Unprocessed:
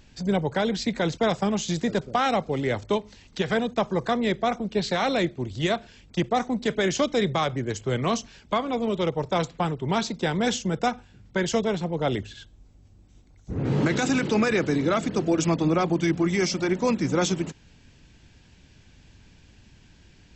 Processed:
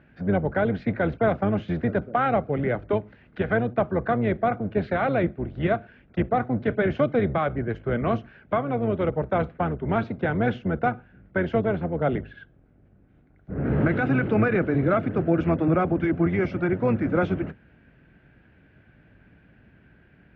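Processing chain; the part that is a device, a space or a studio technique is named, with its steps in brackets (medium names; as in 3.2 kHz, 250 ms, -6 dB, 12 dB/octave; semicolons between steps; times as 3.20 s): sub-octave bass pedal (octave divider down 1 oct, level 0 dB; cabinet simulation 79–2200 Hz, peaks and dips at 86 Hz -8 dB, 640 Hz +4 dB, 960 Hz -6 dB, 1.5 kHz +8 dB); dynamic bell 1.7 kHz, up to -5 dB, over -39 dBFS, Q 2.9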